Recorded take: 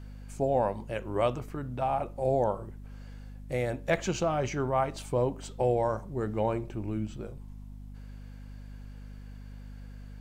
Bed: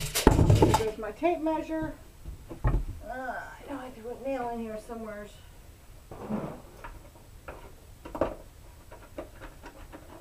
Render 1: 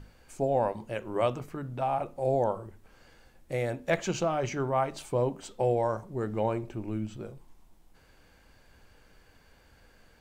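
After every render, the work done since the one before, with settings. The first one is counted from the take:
mains-hum notches 50/100/150/200/250 Hz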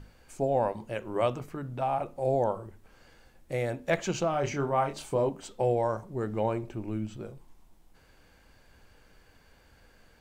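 0:04.31–0:05.29: double-tracking delay 28 ms −6.5 dB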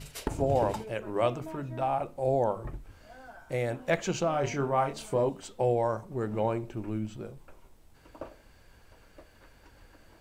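mix in bed −13.5 dB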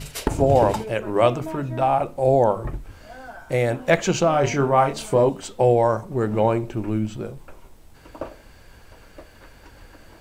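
level +9.5 dB

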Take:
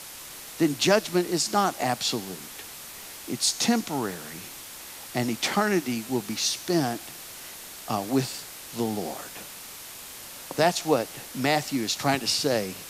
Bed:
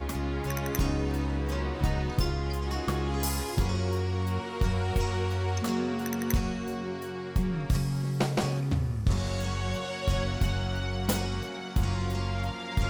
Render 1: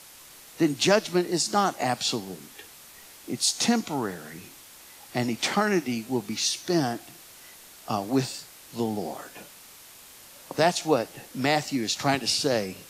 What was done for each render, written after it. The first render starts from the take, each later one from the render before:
noise reduction from a noise print 7 dB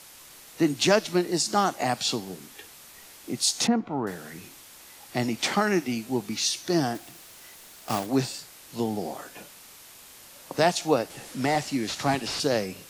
0:03.67–0:04.07: low-pass filter 1,300 Hz
0:06.95–0:08.07: one scale factor per block 3 bits
0:11.10–0:12.40: linear delta modulator 64 kbit/s, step −37 dBFS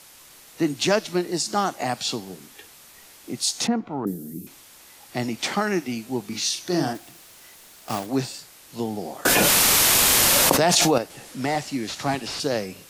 0:04.05–0:04.47: drawn EQ curve 110 Hz 0 dB, 200 Hz +10 dB, 310 Hz +11 dB, 640 Hz −15 dB, 1,500 Hz −25 dB, 6,700 Hz −5 dB, 15,000 Hz +11 dB
0:06.28–0:06.93: double-tracking delay 39 ms −5 dB
0:09.25–0:10.98: envelope flattener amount 100%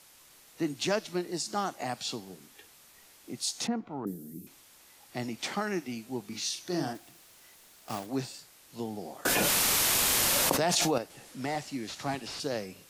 level −8.5 dB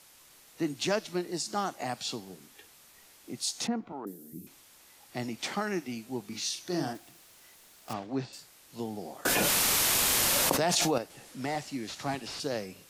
0:03.92–0:04.33: Bessel high-pass filter 360 Hz
0:07.93–0:08.33: high-frequency loss of the air 150 metres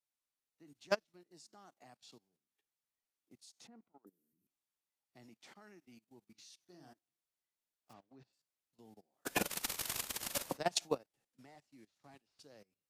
output level in coarse steps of 13 dB
expander for the loud parts 2.5 to 1, over −47 dBFS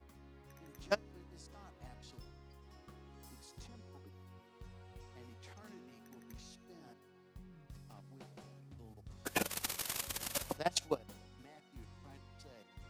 mix in bed −27.5 dB

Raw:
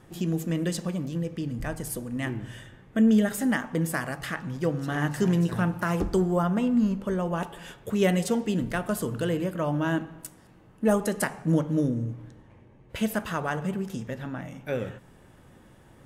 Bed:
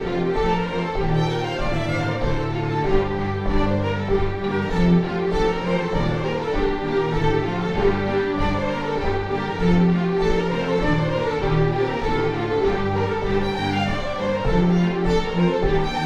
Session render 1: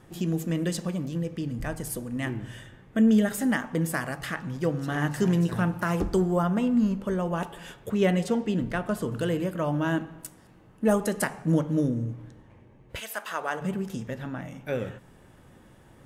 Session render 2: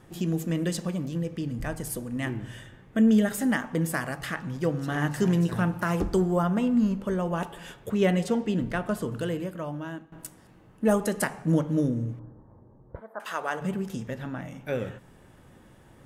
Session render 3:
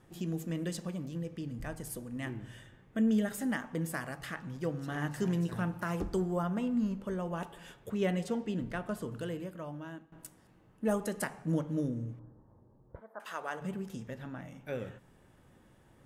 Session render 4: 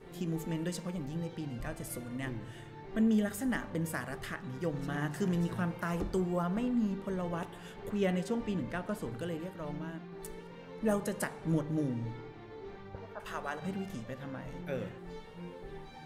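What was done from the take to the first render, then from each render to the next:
0:07.89–0:09.12: high-shelf EQ 6,300 Hz −11.5 dB; 0:12.99–0:13.60: high-pass filter 1,200 Hz → 300 Hz
0:08.90–0:10.12: fade out, to −16.5 dB; 0:12.19–0:13.20: inverse Chebyshev low-pass filter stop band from 2,500 Hz
level −8 dB
mix in bed −26.5 dB

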